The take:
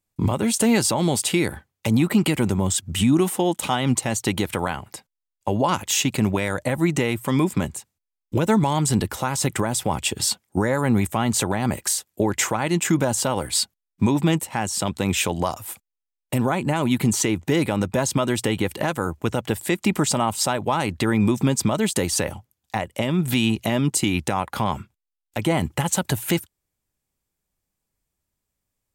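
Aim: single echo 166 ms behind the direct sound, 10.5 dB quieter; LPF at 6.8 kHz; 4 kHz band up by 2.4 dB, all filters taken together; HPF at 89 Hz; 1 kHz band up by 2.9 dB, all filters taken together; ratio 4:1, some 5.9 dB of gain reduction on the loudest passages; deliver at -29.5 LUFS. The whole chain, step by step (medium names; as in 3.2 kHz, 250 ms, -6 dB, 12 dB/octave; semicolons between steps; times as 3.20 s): high-pass 89 Hz; low-pass 6.8 kHz; peaking EQ 1 kHz +3.5 dB; peaking EQ 4 kHz +3.5 dB; compression 4:1, threshold -21 dBFS; delay 166 ms -10.5 dB; trim -3.5 dB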